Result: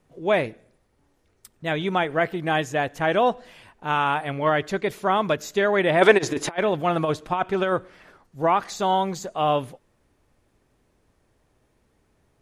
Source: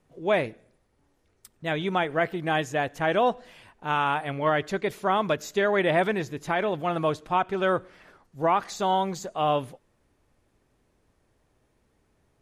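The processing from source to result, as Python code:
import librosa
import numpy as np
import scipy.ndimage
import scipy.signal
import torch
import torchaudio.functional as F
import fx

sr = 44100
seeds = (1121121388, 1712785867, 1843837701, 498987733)

y = fx.spec_box(x, sr, start_s=6.02, length_s=0.54, low_hz=250.0, high_hz=11000.0, gain_db=11)
y = fx.over_compress(y, sr, threshold_db=-24.0, ratio=-0.5, at=(6.17, 7.71), fade=0.02)
y = F.gain(torch.from_numpy(y), 2.5).numpy()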